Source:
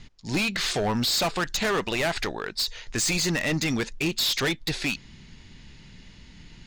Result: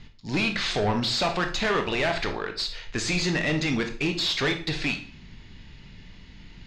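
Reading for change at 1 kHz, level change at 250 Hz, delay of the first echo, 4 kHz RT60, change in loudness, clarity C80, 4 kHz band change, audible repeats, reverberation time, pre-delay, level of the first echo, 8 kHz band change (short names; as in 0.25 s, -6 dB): +1.5 dB, +0.5 dB, none, 0.40 s, -0.5 dB, 14.5 dB, -1.0 dB, none, 0.45 s, 19 ms, none, -7.5 dB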